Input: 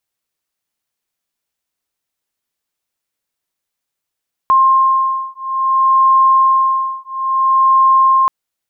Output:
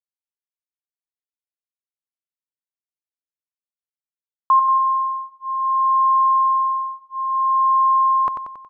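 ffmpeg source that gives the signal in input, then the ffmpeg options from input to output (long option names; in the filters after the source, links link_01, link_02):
-f lavfi -i "aevalsrc='0.237*(sin(2*PI*1060*t)+sin(2*PI*1060.59*t))':duration=3.78:sample_rate=44100"
-filter_complex "[0:a]agate=range=-33dB:threshold=-23dB:ratio=3:detection=peak,lowpass=frequency=1100:poles=1,asplit=2[link_01][link_02];[link_02]aecho=0:1:92|184|276|368|460|552|644:0.447|0.25|0.14|0.0784|0.0439|0.0246|0.0138[link_03];[link_01][link_03]amix=inputs=2:normalize=0"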